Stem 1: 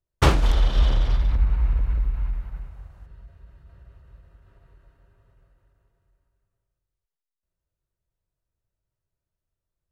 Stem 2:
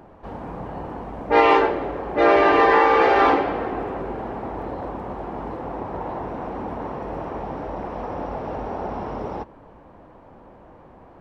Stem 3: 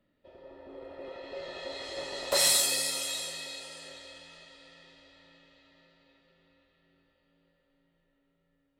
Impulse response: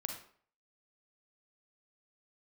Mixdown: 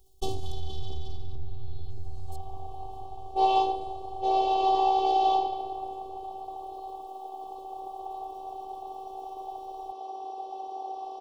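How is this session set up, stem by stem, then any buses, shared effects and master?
−9.5 dB, 0.00 s, no send, envelope flattener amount 50%
+1.0 dB, 2.05 s, no send, high-pass filter 810 Hz 12 dB per octave
−14.5 dB, 0.00 s, muted 0:02.36–0:03.36, no send, step-sequenced phaser 2.1 Hz 410–2,400 Hz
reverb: not used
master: elliptic band-stop filter 880–3,200 Hz, stop band 40 dB; phases set to zero 384 Hz

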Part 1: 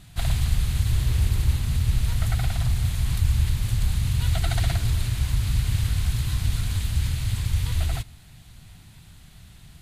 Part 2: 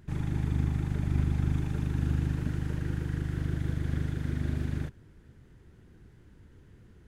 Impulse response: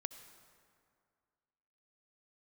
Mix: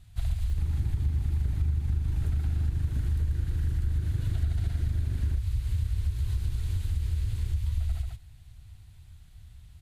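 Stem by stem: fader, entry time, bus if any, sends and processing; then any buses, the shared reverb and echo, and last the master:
−13.0 dB, 0.00 s, no send, echo send −6 dB, no processing
−1.0 dB, 0.50 s, no send, no echo send, high-pass filter 41 Hz 12 dB per octave; upward compression, threshold −35 dBFS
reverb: not used
echo: single-tap delay 138 ms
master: low shelf with overshoot 120 Hz +10.5 dB, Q 1.5; downward compressor, threshold −24 dBFS, peak gain reduction 12.5 dB

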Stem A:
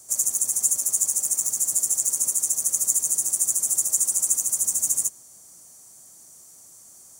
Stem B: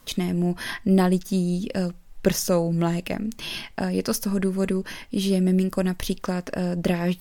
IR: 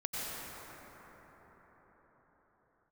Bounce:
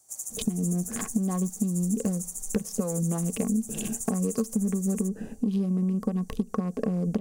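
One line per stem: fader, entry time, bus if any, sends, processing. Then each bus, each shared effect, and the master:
−13.5 dB, 0.00 s, no send, no processing
+1.0 dB, 0.30 s, no send, adaptive Wiener filter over 41 samples; downward compressor, threshold −32 dBFS, peak gain reduction 17 dB; hollow resonant body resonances 220/440/1,100 Hz, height 17 dB, ringing for 60 ms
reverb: not used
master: parametric band 780 Hz +8.5 dB 0.25 octaves; downward compressor, threshold −23 dBFS, peak gain reduction 9.5 dB

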